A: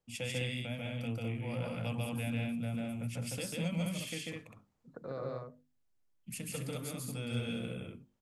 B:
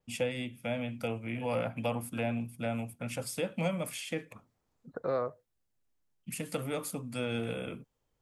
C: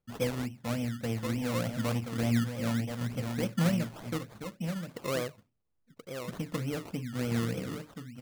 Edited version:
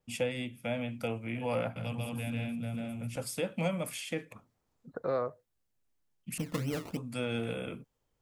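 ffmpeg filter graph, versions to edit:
ffmpeg -i take0.wav -i take1.wav -i take2.wav -filter_complex "[1:a]asplit=3[link_01][link_02][link_03];[link_01]atrim=end=1.762[link_04];[0:a]atrim=start=1.758:end=3.162[link_05];[link_02]atrim=start=3.158:end=6.382[link_06];[2:a]atrim=start=6.378:end=6.972[link_07];[link_03]atrim=start=6.968[link_08];[link_04][link_05]acrossfade=duration=0.004:curve1=hsin:curve2=hsin[link_09];[link_09][link_06]acrossfade=duration=0.004:curve1=hsin:curve2=hsin[link_10];[link_10][link_07]acrossfade=duration=0.004:curve1=hsin:curve2=hsin[link_11];[link_11][link_08]acrossfade=duration=0.004:curve1=hsin:curve2=hsin" out.wav

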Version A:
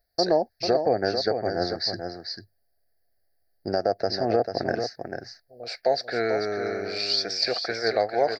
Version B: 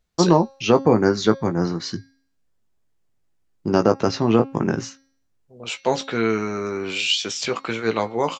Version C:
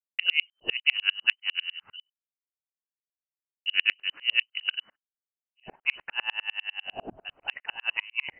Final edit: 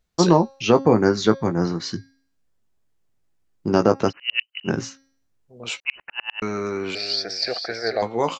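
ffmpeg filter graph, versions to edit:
ffmpeg -i take0.wav -i take1.wav -i take2.wav -filter_complex "[2:a]asplit=2[link_01][link_02];[1:a]asplit=4[link_03][link_04][link_05][link_06];[link_03]atrim=end=4.13[link_07];[link_01]atrim=start=4.07:end=4.7[link_08];[link_04]atrim=start=4.64:end=5.802[link_09];[link_02]atrim=start=5.798:end=6.422[link_10];[link_05]atrim=start=6.418:end=6.952[link_11];[0:a]atrim=start=6.948:end=8.022[link_12];[link_06]atrim=start=8.018[link_13];[link_07][link_08]acrossfade=duration=0.06:curve1=tri:curve2=tri[link_14];[link_14][link_09]acrossfade=duration=0.06:curve1=tri:curve2=tri[link_15];[link_15][link_10]acrossfade=duration=0.004:curve1=hsin:curve2=hsin[link_16];[link_16][link_11]acrossfade=duration=0.004:curve1=hsin:curve2=hsin[link_17];[link_17][link_12]acrossfade=duration=0.004:curve1=hsin:curve2=hsin[link_18];[link_18][link_13]acrossfade=duration=0.004:curve1=hsin:curve2=hsin" out.wav

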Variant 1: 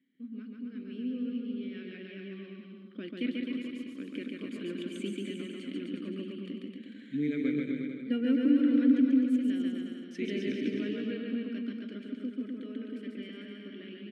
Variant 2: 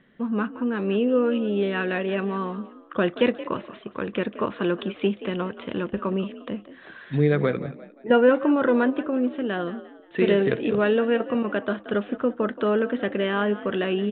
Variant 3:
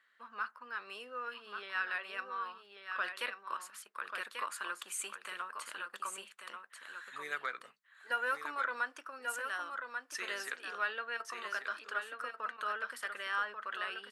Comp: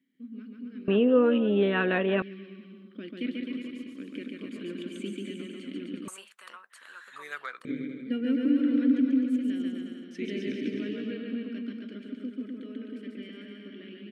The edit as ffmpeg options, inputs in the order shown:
ffmpeg -i take0.wav -i take1.wav -i take2.wav -filter_complex "[0:a]asplit=3[link_01][link_02][link_03];[link_01]atrim=end=0.882[link_04];[1:a]atrim=start=0.878:end=2.222[link_05];[link_02]atrim=start=2.218:end=6.082[link_06];[2:a]atrim=start=6.078:end=7.652[link_07];[link_03]atrim=start=7.648[link_08];[link_04][link_05]acrossfade=duration=0.004:curve1=hsin:curve2=hsin[link_09];[link_09][link_06]acrossfade=duration=0.004:curve1=hsin:curve2=hsin[link_10];[link_10][link_07]acrossfade=duration=0.004:curve1=hsin:curve2=hsin[link_11];[link_11][link_08]acrossfade=duration=0.004:curve1=hsin:curve2=hsin" out.wav

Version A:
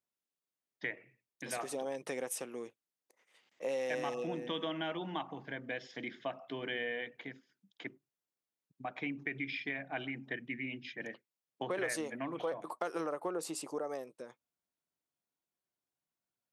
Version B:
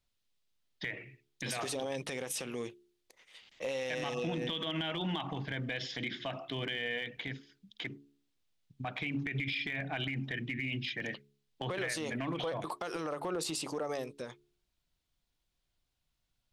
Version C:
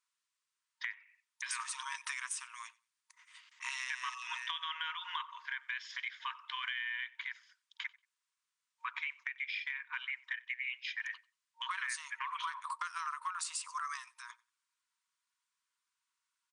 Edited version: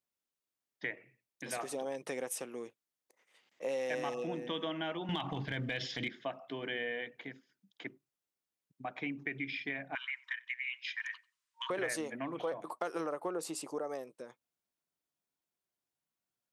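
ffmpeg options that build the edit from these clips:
ffmpeg -i take0.wav -i take1.wav -i take2.wav -filter_complex "[0:a]asplit=3[link_01][link_02][link_03];[link_01]atrim=end=5.092[link_04];[1:a]atrim=start=5.088:end=6.082[link_05];[link_02]atrim=start=6.078:end=9.952[link_06];[2:a]atrim=start=9.948:end=11.702[link_07];[link_03]atrim=start=11.698[link_08];[link_04][link_05]acrossfade=duration=0.004:curve1=hsin:curve2=hsin[link_09];[link_09][link_06]acrossfade=duration=0.004:curve1=hsin:curve2=hsin[link_10];[link_10][link_07]acrossfade=duration=0.004:curve1=hsin:curve2=hsin[link_11];[link_11][link_08]acrossfade=duration=0.004:curve1=hsin:curve2=hsin" out.wav

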